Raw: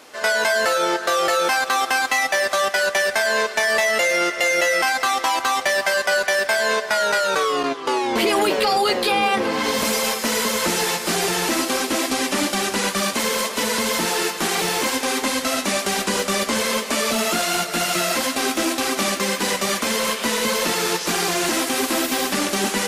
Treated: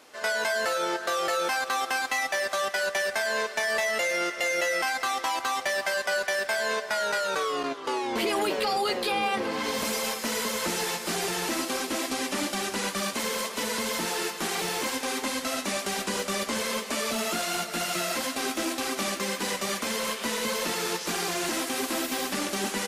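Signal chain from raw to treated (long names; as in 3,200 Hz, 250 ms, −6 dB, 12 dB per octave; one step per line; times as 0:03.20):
single-tap delay 487 ms −22 dB
level −8 dB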